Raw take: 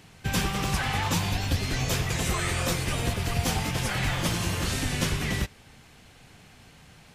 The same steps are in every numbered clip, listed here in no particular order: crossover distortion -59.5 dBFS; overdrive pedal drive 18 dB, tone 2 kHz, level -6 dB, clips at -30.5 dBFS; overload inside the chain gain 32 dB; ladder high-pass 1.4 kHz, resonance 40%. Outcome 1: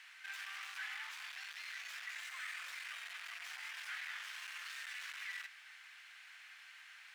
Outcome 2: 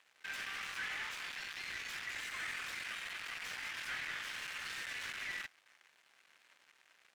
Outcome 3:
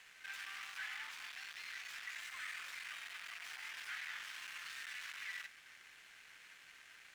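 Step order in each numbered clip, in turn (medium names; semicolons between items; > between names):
overload inside the chain > overdrive pedal > crossover distortion > ladder high-pass; overload inside the chain > ladder high-pass > crossover distortion > overdrive pedal; overload inside the chain > overdrive pedal > ladder high-pass > crossover distortion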